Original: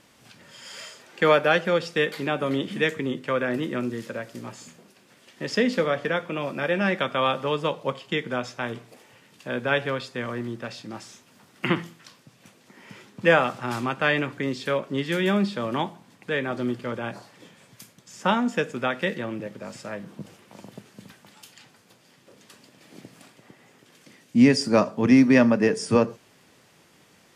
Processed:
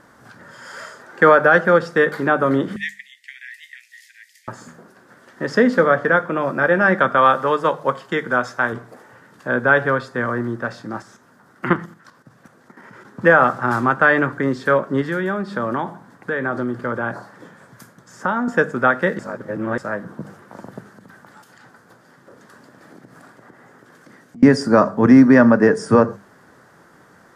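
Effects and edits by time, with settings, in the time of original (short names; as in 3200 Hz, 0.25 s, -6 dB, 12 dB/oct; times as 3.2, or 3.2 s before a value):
2.76–4.48 steep high-pass 1900 Hz 96 dB/oct
7.17–8.73 tilt +1.5 dB/oct
11.02–13.05 level quantiser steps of 10 dB
15.01–18.48 compressor 4:1, threshold -27 dBFS
19.19–19.78 reverse
20.92–24.43 compressor, threshold -47 dBFS
whole clip: resonant high shelf 2000 Hz -8.5 dB, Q 3; notches 50/100/150/200 Hz; maximiser +8.5 dB; gain -1 dB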